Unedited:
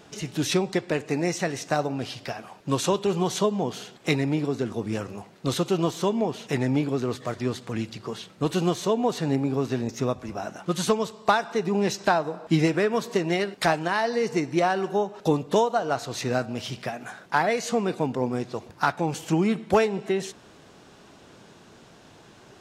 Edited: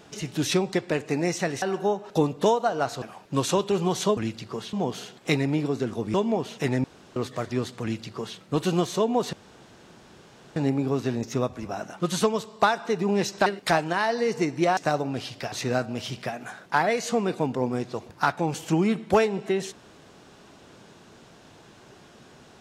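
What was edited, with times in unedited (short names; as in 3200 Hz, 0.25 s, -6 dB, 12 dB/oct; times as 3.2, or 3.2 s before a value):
1.62–2.37 swap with 14.72–16.12
4.93–6.03 cut
6.73–7.05 room tone
7.71–8.27 copy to 3.52
9.22 insert room tone 1.23 s
12.12–13.41 cut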